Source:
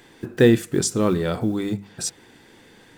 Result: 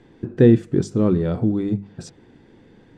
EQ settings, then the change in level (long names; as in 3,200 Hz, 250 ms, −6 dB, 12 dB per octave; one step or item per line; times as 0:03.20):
high-frequency loss of the air 86 metres
tilt shelving filter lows +7.5 dB, about 640 Hz
−2.0 dB